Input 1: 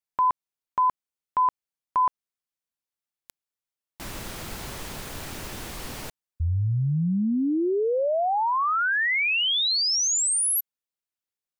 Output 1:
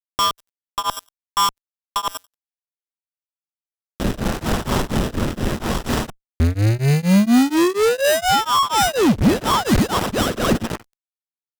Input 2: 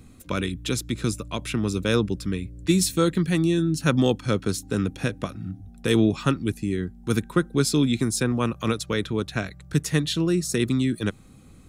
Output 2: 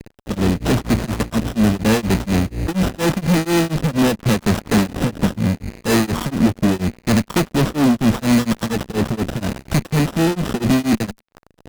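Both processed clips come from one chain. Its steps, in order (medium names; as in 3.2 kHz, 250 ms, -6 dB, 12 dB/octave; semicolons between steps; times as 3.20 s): median filter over 15 samples; treble shelf 2.4 kHz +4.5 dB; on a send: feedback echo behind a high-pass 94 ms, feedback 54%, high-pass 2.3 kHz, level -12 dB; on the sum: sample-and-hold 20×; in parallel at -0.5 dB: compression 8:1, threshold -34 dBFS; on the sum: rotary cabinet horn 0.8 Hz; fuzz box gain 35 dB, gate -40 dBFS; dynamic bell 220 Hz, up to +7 dB, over -33 dBFS, Q 3.8; tremolo of two beating tones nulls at 4.2 Hz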